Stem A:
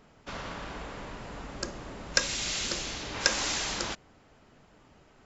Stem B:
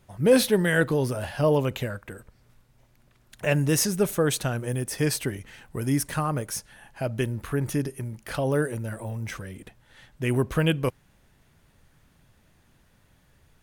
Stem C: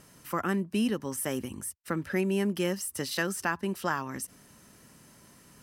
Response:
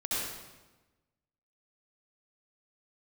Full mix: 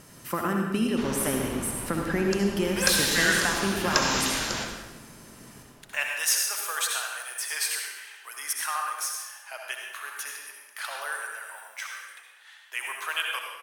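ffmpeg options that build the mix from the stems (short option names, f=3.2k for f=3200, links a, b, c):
-filter_complex "[0:a]adelay=700,volume=-8dB,asplit=2[a][b];[b]volume=-8dB[c];[1:a]highpass=f=980:w=0.5412,highpass=f=980:w=1.3066,adelay=2500,volume=-9dB,asplit=2[d][e];[e]volume=-4dB[f];[2:a]acompressor=threshold=-29dB:ratio=6,volume=-5dB,asplit=2[g][h];[h]volume=-4.5dB[i];[3:a]atrim=start_sample=2205[j];[c][f][i]amix=inputs=3:normalize=0[k];[k][j]afir=irnorm=-1:irlink=0[l];[a][d][g][l]amix=inputs=4:normalize=0,acontrast=74"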